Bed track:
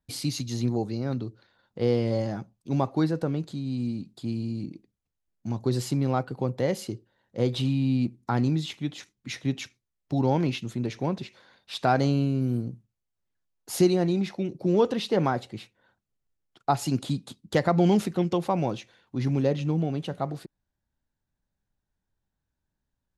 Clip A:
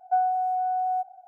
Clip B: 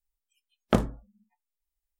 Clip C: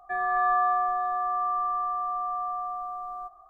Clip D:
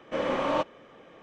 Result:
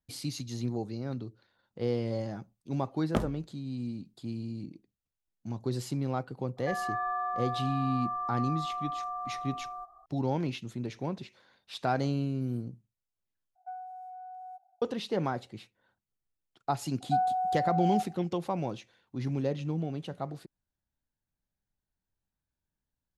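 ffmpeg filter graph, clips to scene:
-filter_complex "[1:a]asplit=2[a][b];[0:a]volume=-6.5dB[c];[3:a]acompressor=threshold=-29dB:ratio=2:attack=18:release=528:knee=1:detection=peak[d];[a]tiltshelf=f=1.1k:g=-3.5[e];[c]asplit=2[f][g];[f]atrim=end=13.554[h];[e]atrim=end=1.27,asetpts=PTS-STARTPTS,volume=-17.5dB[i];[g]atrim=start=14.816[j];[2:a]atrim=end=1.99,asetpts=PTS-STARTPTS,volume=-6.5dB,afade=t=in:d=0.004:c=hsin,afade=t=out:st=1.986:d=0.004:c=hsin,adelay=2420[k];[d]atrim=end=3.49,asetpts=PTS-STARTPTS,volume=-4dB,afade=t=in:d=0.004:c=hsin,afade=t=out:st=3.486:d=0.004:c=hsin,adelay=6570[l];[b]atrim=end=1.27,asetpts=PTS-STARTPTS,volume=-4dB,afade=t=in:d=0.004:c=hsin,afade=t=out:st=1.266:d=0.004:c=hsin,adelay=749700S[m];[h][i]acrossfade=d=0.004:c1=hsin:c2=hsin[n];[n][j]acrossfade=d=0.004:c1=hsin:c2=hsin[o];[o][k][l][m]amix=inputs=4:normalize=0"

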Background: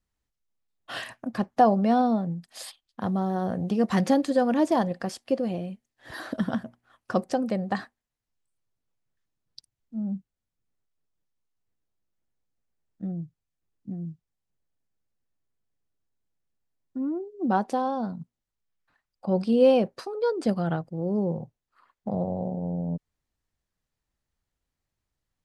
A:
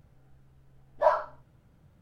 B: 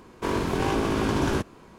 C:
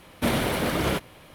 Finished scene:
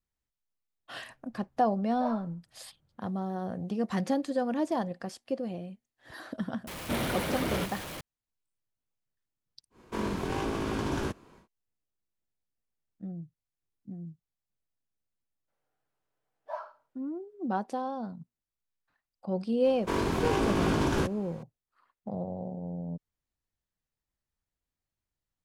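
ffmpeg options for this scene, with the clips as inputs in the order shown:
-filter_complex "[1:a]asplit=2[a][b];[2:a]asplit=2[c][d];[0:a]volume=-7dB[e];[3:a]aeval=exprs='val(0)+0.5*0.0473*sgn(val(0))':c=same[f];[b]highpass=520[g];[d]alimiter=limit=-15.5dB:level=0:latency=1:release=94[h];[a]atrim=end=2.01,asetpts=PTS-STARTPTS,volume=-13.5dB,afade=t=in:d=0.004:c=hsin,afade=t=out:st=2.006:d=0.004:c=hsin,adelay=990[i];[f]atrim=end=1.34,asetpts=PTS-STARTPTS,volume=-9dB,afade=t=in:d=0.004:c=hsin,afade=t=out:st=1.336:d=0.004:c=hsin,adelay=6670[j];[c]atrim=end=1.78,asetpts=PTS-STARTPTS,volume=-7dB,afade=t=in:d=0.1,afade=t=out:st=1.68:d=0.1,adelay=427770S[k];[g]atrim=end=2.01,asetpts=PTS-STARTPTS,volume=-14dB,afade=t=in:d=0.02,afade=t=out:st=1.99:d=0.02,adelay=15470[l];[h]atrim=end=1.78,asetpts=PTS-STARTPTS,volume=-2dB,afade=t=in:d=0.004:c=hsin,afade=t=out:st=1.776:d=0.004:c=hsin,adelay=19650[m];[e][i][j][k][l][m]amix=inputs=6:normalize=0"

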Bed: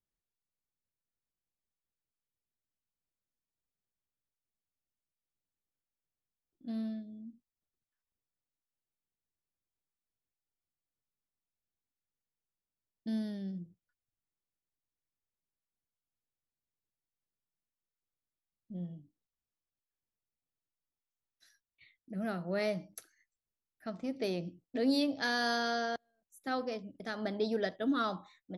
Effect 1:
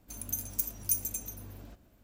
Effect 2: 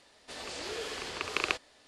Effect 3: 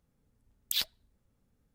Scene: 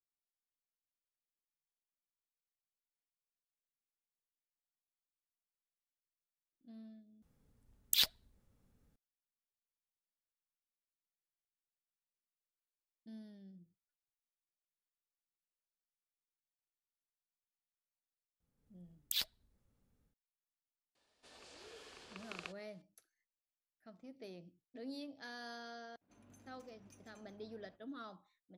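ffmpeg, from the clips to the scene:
-filter_complex "[3:a]asplit=2[a][b];[0:a]volume=-17dB[c];[b]dynaudnorm=f=140:g=3:m=6.5dB[d];[2:a]bandreject=f=2k:w=14[e];[1:a]highpass=140,lowpass=2.5k[f];[c]asplit=2[g][h];[g]atrim=end=7.224[i];[a]atrim=end=1.74[j];[h]atrim=start=8.956[k];[d]atrim=end=1.74,asetpts=PTS-STARTPTS,volume=-11dB,afade=t=in:d=0.004:c=hsin,afade=t=out:st=1.736:d=0.004:c=hsin,adelay=18400[l];[e]atrim=end=1.87,asetpts=PTS-STARTPTS,volume=-17.5dB,afade=t=in:d=0.004:c=hsin,afade=t=out:st=1.866:d=0.004:c=hsin,adelay=20950[m];[f]atrim=end=2.03,asetpts=PTS-STARTPTS,volume=-13.5dB,afade=t=in:d=0.004:c=hsin,afade=t=out:st=2.026:d=0.004:c=hsin,adelay=26010[n];[i][j]acrossfade=d=0.004:c1=hsin:c2=hsin[o];[o][k]acrossfade=d=0.004:c1=hsin:c2=hsin[p];[p][l][m][n]amix=inputs=4:normalize=0"

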